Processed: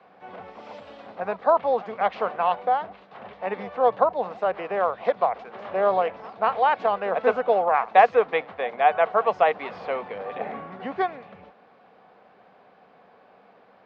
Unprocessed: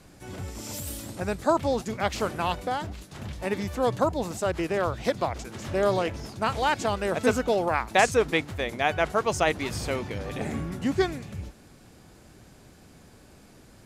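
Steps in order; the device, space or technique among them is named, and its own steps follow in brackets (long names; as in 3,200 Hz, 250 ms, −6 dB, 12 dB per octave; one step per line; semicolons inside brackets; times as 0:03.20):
low-pass filter 8,200 Hz
three-way crossover with the lows and the highs turned down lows −22 dB, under 320 Hz, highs −15 dB, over 3,000 Hz
high-shelf EQ 7,800 Hz −5.5 dB
echo ahead of the sound 206 ms −21 dB
guitar cabinet (loudspeaker in its box 90–4,400 Hz, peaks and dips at 190 Hz +9 dB, 330 Hz −9 dB, 480 Hz +6 dB, 740 Hz +9 dB, 1,100 Hz +6 dB)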